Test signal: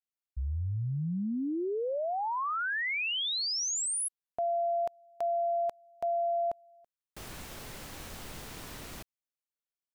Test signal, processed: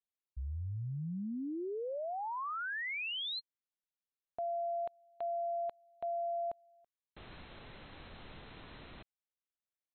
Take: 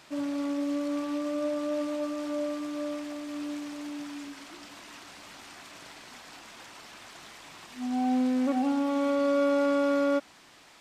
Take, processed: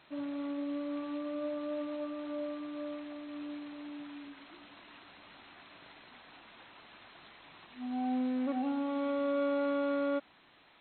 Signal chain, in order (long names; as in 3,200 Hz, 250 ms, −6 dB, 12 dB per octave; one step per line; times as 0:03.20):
linear-phase brick-wall low-pass 4,200 Hz
level −6.5 dB